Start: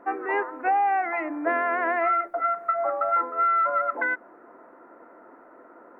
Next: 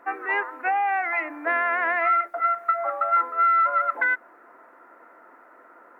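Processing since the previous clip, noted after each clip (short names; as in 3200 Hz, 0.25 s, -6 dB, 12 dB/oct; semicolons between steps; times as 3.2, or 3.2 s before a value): tilt shelf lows -9 dB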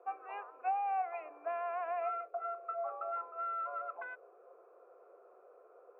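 band noise 360–550 Hz -42 dBFS; vowel filter a; gain -5 dB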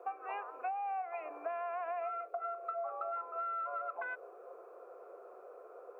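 compressor 6:1, threshold -44 dBFS, peak gain reduction 13 dB; gain +7.5 dB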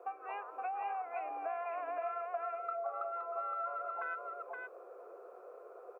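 echo 0.519 s -3.5 dB; gain -1.5 dB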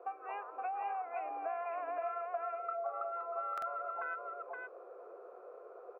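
air absorption 200 m; stuck buffer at 3.53, samples 2048, times 1; gain +1 dB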